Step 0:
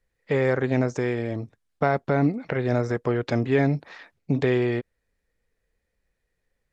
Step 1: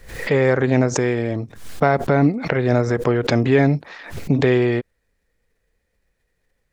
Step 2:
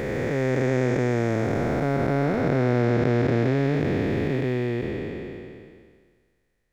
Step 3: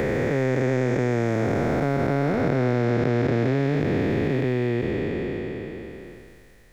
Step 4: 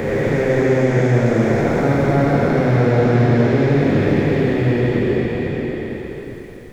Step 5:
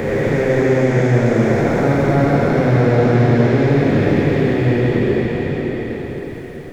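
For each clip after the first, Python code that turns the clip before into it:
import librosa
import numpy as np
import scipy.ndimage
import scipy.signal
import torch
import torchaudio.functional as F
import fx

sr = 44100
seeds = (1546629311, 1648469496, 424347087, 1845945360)

y1 = fx.pre_swell(x, sr, db_per_s=93.0)
y1 = F.gain(torch.from_numpy(y1), 5.5).numpy()
y2 = fx.spec_blur(y1, sr, span_ms=1230.0)
y3 = fx.band_squash(y2, sr, depth_pct=70)
y4 = fx.rev_plate(y3, sr, seeds[0], rt60_s=3.5, hf_ratio=0.9, predelay_ms=0, drr_db=-5.5)
y5 = fx.echo_swing(y4, sr, ms=1076, ratio=1.5, feedback_pct=49, wet_db=-16)
y5 = F.gain(torch.from_numpy(y5), 1.0).numpy()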